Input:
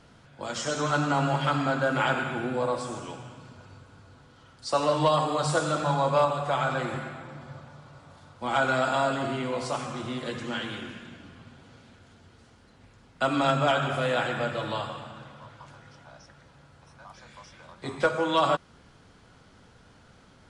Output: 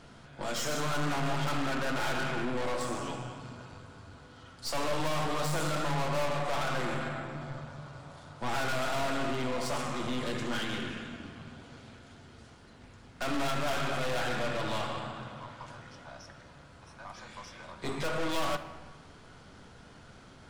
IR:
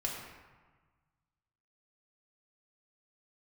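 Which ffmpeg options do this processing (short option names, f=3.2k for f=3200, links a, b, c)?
-filter_complex "[0:a]aeval=exprs='(tanh(63.1*val(0)+0.55)-tanh(0.55))/63.1':c=same,asplit=2[a][b];[1:a]atrim=start_sample=2205[c];[b][c]afir=irnorm=-1:irlink=0,volume=-7dB[d];[a][d]amix=inputs=2:normalize=0,volume=2dB"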